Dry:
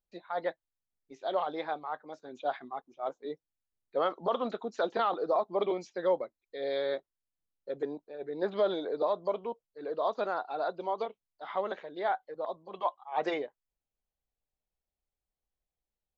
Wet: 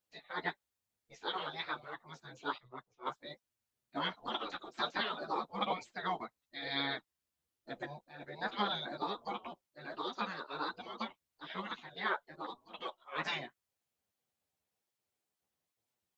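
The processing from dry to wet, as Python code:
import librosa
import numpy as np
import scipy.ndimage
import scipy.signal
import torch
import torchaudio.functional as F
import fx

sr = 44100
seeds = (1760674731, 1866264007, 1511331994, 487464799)

y = fx.spec_gate(x, sr, threshold_db=-15, keep='weak')
y = fx.chorus_voices(y, sr, voices=2, hz=1.1, base_ms=11, depth_ms=3.0, mix_pct=45)
y = fx.band_widen(y, sr, depth_pct=100, at=(2.58, 3.21))
y = y * librosa.db_to_amplitude(9.0)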